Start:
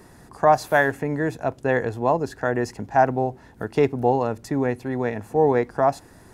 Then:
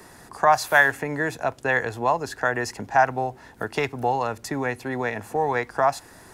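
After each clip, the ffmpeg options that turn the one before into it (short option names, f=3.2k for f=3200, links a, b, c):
-filter_complex "[0:a]lowshelf=f=440:g=-10,acrossover=split=140|800[a][b][c];[b]acompressor=threshold=-33dB:ratio=6[d];[a][d][c]amix=inputs=3:normalize=0,volume=6dB"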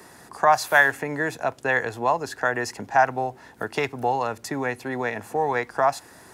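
-af "highpass=f=120:p=1"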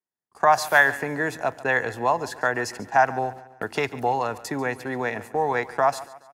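-af "agate=range=-50dB:threshold=-38dB:ratio=16:detection=peak,aecho=1:1:141|282|423|564:0.126|0.0567|0.0255|0.0115"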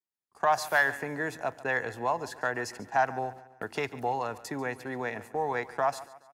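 -af "asoftclip=type=tanh:threshold=-5.5dB,volume=-6.5dB"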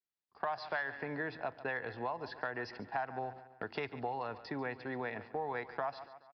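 -af "aresample=11025,aresample=44100,acompressor=threshold=-30dB:ratio=6,volume=-3.5dB"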